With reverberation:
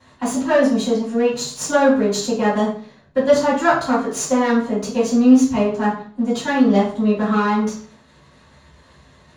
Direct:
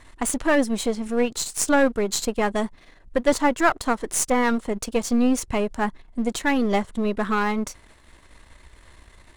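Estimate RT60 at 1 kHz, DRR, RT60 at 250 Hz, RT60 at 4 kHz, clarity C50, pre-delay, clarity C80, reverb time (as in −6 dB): 0.45 s, −11.5 dB, 0.50 s, 0.40 s, 4.5 dB, 3 ms, 9.5 dB, 0.45 s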